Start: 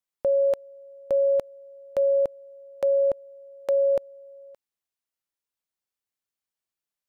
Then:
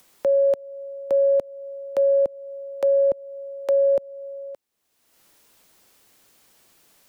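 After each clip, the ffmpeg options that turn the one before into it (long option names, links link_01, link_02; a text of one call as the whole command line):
ffmpeg -i in.wav -filter_complex "[0:a]acrossover=split=190|660[link_01][link_02][link_03];[link_02]acontrast=44[link_04];[link_01][link_04][link_03]amix=inputs=3:normalize=0,alimiter=limit=-21.5dB:level=0:latency=1:release=279,acompressor=mode=upward:threshold=-45dB:ratio=2.5,volume=7dB" out.wav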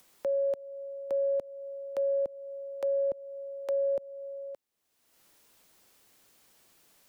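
ffmpeg -i in.wav -af "alimiter=limit=-19.5dB:level=0:latency=1:release=36,volume=-5dB" out.wav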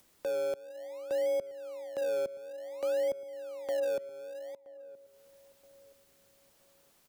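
ffmpeg -i in.wav -filter_complex "[0:a]asplit=2[link_01][link_02];[link_02]acrusher=samples=31:mix=1:aa=0.000001:lfo=1:lforange=31:lforate=0.55,volume=-10.5dB[link_03];[link_01][link_03]amix=inputs=2:normalize=0,tremolo=f=260:d=0.261,asplit=2[link_04][link_05];[link_05]adelay=973,lowpass=frequency=1000:poles=1,volume=-18.5dB,asplit=2[link_06][link_07];[link_07]adelay=973,lowpass=frequency=1000:poles=1,volume=0.36,asplit=2[link_08][link_09];[link_09]adelay=973,lowpass=frequency=1000:poles=1,volume=0.36[link_10];[link_04][link_06][link_08][link_10]amix=inputs=4:normalize=0,volume=-2.5dB" out.wav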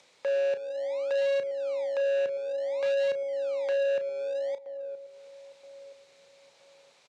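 ffmpeg -i in.wav -filter_complex "[0:a]asoftclip=type=hard:threshold=-36dB,highpass=180,equalizer=frequency=220:width_type=q:width=4:gain=-8,equalizer=frequency=320:width_type=q:width=4:gain=-8,equalizer=frequency=520:width_type=q:width=4:gain=7,equalizer=frequency=880:width_type=q:width=4:gain=4,equalizer=frequency=2300:width_type=q:width=4:gain=8,equalizer=frequency=3900:width_type=q:width=4:gain=7,lowpass=frequency=7300:width=0.5412,lowpass=frequency=7300:width=1.3066,asplit=2[link_01][link_02];[link_02]adelay=34,volume=-11dB[link_03];[link_01][link_03]amix=inputs=2:normalize=0,volume=5dB" out.wav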